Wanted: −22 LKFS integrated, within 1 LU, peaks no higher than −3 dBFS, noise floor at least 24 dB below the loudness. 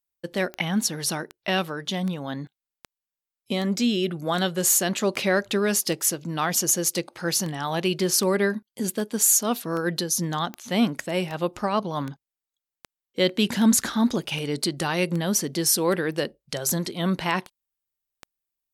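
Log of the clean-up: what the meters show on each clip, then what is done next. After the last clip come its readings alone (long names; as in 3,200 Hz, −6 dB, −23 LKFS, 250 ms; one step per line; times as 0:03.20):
number of clicks 24; integrated loudness −24.5 LKFS; sample peak −8.5 dBFS; target loudness −22.0 LKFS
→ click removal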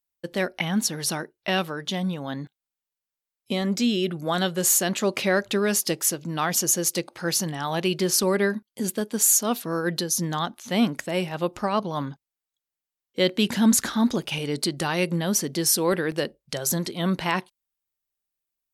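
number of clicks 0; integrated loudness −24.5 LKFS; sample peak −8.5 dBFS; target loudness −22.0 LKFS
→ level +2.5 dB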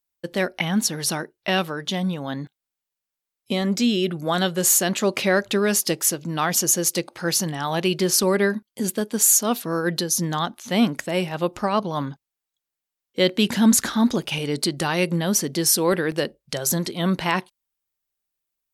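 integrated loudness −22.0 LKFS; sample peak −6.0 dBFS; background noise floor −86 dBFS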